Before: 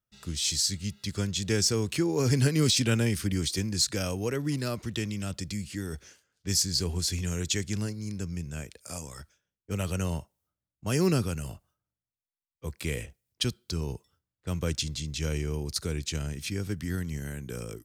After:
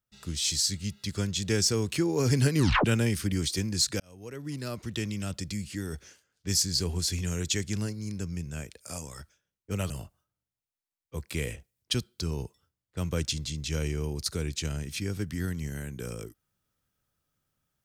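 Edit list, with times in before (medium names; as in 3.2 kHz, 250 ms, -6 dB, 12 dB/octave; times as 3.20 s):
2.58 s: tape stop 0.27 s
4.00–5.07 s: fade in
9.90–11.40 s: delete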